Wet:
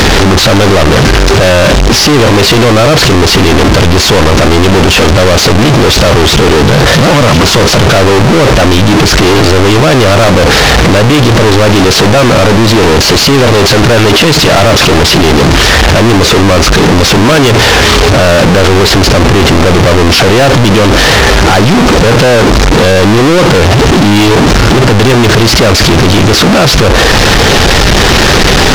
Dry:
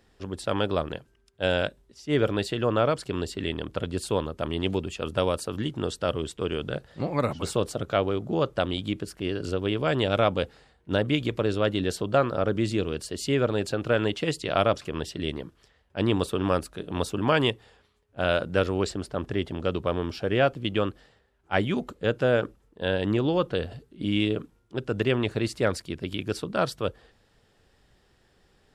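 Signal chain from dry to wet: one-bit delta coder 32 kbps, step -19 dBFS; waveshaping leveller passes 5; trim +4.5 dB

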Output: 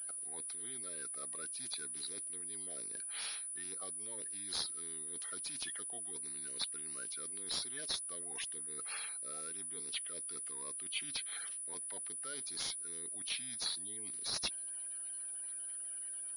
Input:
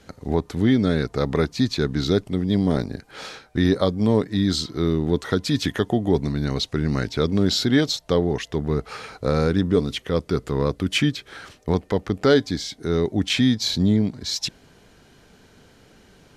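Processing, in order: coarse spectral quantiser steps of 30 dB; reverse; compression 5:1, threshold -30 dBFS, peak gain reduction 16 dB; reverse; differentiator; class-D stage that switches slowly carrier 9.8 kHz; trim +3.5 dB

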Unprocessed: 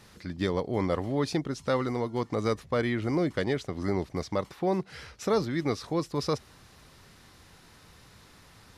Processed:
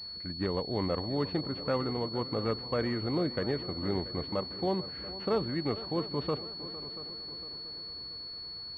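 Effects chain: peaking EQ 63 Hz +7.5 dB 0.29 oct; on a send: multi-head delay 228 ms, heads second and third, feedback 54%, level -16 dB; on the sum: class-D stage that switches slowly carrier 4.4 kHz; trim -3.5 dB

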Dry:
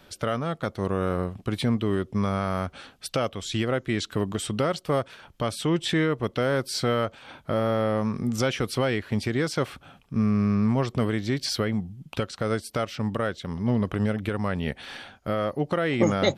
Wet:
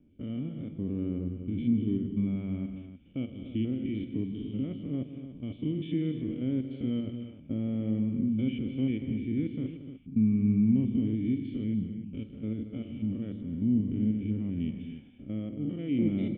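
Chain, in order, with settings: spectrogram pixelated in time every 100 ms; cascade formant filter i; bass shelf 270 Hz +7.5 dB; level-controlled noise filter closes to 1.3 kHz, open at -27.5 dBFS; on a send: multi-tap echo 46/156/231/298 ms -14/-13.5/-12.5/-12 dB

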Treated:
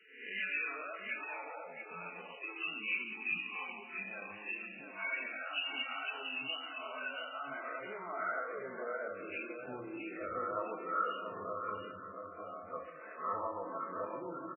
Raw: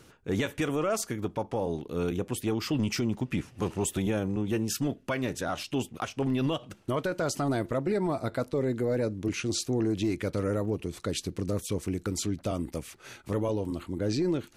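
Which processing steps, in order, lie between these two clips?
reverse spectral sustain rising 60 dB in 0.67 s; spectral noise reduction 14 dB; graphic EQ 1/2/4 kHz -5/+6/-5 dB; peak limiter -28.5 dBFS, peak gain reduction 12 dB; compression 2.5:1, threshold -41 dBFS, peak gain reduction 6.5 dB; 11.91–12.66 s: feedback comb 79 Hz, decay 0.43 s, harmonics all, mix 100%; band-pass sweep 2.7 kHz -> 1.1 kHz, 7.23–9.40 s; feedback delay 684 ms, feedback 18%, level -7 dB; simulated room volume 2400 m³, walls mixed, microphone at 1.5 m; trim +13 dB; MP3 8 kbps 12 kHz

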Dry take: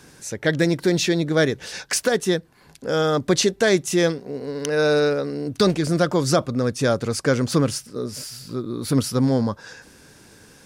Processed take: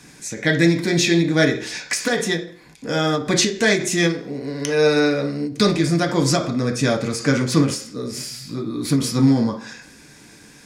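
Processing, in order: treble shelf 11 kHz -7 dB; reverberation RT60 0.45 s, pre-delay 3 ms, DRR 1.5 dB; endings held to a fixed fall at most 120 dB/s; trim +3.5 dB

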